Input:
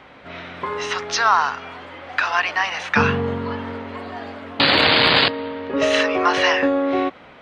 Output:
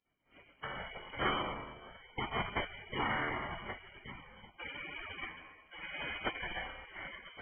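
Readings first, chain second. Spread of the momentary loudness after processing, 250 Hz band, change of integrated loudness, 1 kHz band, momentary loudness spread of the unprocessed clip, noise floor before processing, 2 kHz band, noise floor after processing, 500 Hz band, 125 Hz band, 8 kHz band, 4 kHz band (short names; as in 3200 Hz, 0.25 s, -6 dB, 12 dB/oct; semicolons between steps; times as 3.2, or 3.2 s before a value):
16 LU, -21.5 dB, -21.0 dB, -19.5 dB, 19 LU, -45 dBFS, -19.0 dB, -68 dBFS, -23.0 dB, -17.0 dB, under -40 dB, -23.0 dB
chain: inverse Chebyshev band-stop 240–580 Hz, stop band 50 dB; bell 68 Hz +10 dB 0.81 oct; gate -35 dBFS, range -20 dB; resonator 78 Hz, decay 1.4 s, harmonics all, mix 80%; thin delay 1.126 s, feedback 39%, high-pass 1700 Hz, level -5 dB; spectral gate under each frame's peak -20 dB weak; inverted band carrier 3100 Hz; gain +14 dB; MP3 32 kbps 11025 Hz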